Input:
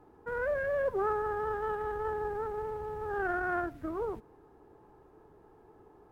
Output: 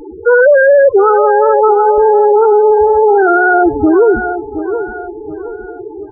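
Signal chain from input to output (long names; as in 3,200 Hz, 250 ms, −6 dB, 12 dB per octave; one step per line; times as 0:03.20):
spectral peaks only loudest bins 4
0:00.89–0:01.98: low-shelf EQ 420 Hz −8.5 dB
in parallel at −0.5 dB: downward compressor, threshold −46 dBFS, peak gain reduction 17 dB
on the sum: tape wow and flutter 25 cents
hum removal 57.26 Hz, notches 2
on a send: repeating echo 721 ms, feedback 38%, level −13 dB
on the sum: boost into a limiter +29.5 dB
level −1 dB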